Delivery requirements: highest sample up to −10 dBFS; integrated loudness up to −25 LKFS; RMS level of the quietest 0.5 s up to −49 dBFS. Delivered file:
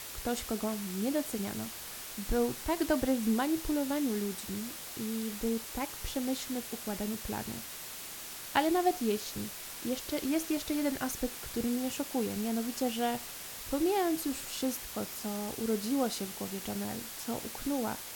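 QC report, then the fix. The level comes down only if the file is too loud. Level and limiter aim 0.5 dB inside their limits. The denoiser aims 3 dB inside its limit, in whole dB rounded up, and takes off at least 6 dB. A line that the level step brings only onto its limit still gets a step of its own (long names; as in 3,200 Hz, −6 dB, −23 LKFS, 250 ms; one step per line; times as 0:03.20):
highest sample −12.5 dBFS: in spec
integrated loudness −33.5 LKFS: in spec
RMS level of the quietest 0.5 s −44 dBFS: out of spec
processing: broadband denoise 8 dB, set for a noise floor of −44 dBFS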